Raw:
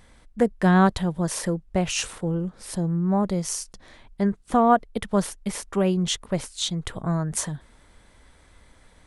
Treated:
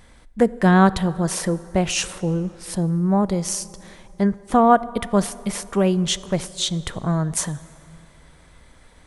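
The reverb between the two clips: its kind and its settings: plate-style reverb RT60 3 s, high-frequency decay 0.55×, DRR 17 dB; trim +3.5 dB

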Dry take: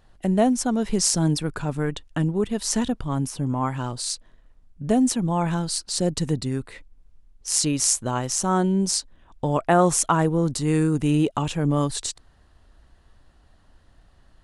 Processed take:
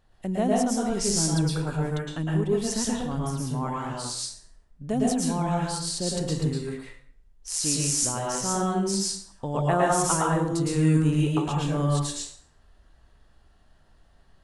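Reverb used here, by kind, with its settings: plate-style reverb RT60 0.56 s, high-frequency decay 0.8×, pre-delay 100 ms, DRR -4 dB; trim -7.5 dB

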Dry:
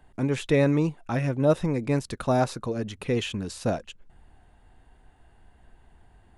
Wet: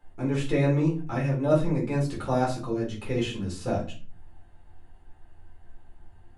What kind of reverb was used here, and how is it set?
simulated room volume 220 m³, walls furnished, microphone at 4.1 m; trim -10 dB

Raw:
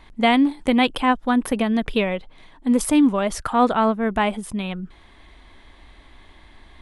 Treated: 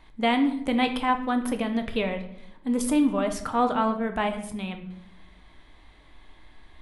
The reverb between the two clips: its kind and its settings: simulated room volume 180 m³, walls mixed, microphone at 0.49 m; trim -6.5 dB

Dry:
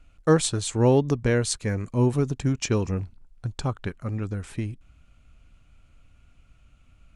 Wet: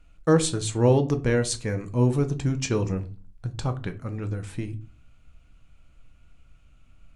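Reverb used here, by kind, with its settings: simulated room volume 170 m³, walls furnished, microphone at 0.64 m; trim -1.5 dB

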